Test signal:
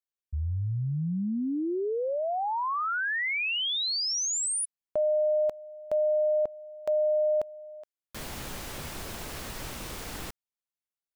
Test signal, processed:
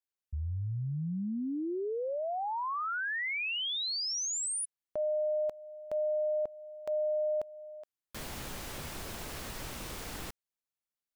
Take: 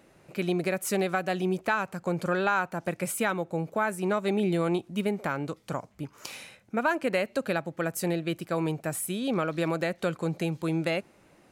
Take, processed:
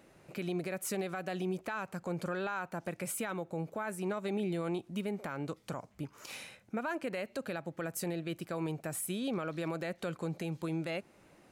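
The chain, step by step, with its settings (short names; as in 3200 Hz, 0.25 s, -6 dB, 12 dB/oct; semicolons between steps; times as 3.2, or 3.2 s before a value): in parallel at -0.5 dB: compressor, threshold -35 dBFS; on the sum: limiter -19 dBFS; gain -8 dB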